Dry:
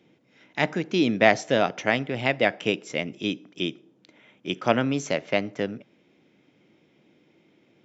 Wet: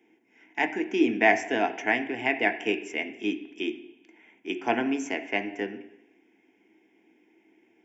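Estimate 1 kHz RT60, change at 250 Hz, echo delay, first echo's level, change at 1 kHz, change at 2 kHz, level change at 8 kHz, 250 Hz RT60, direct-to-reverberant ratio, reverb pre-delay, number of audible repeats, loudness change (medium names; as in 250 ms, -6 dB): 0.85 s, -1.5 dB, no echo, no echo, -1.0 dB, 0.0 dB, no reading, 0.80 s, 6.0 dB, 3 ms, no echo, -2.0 dB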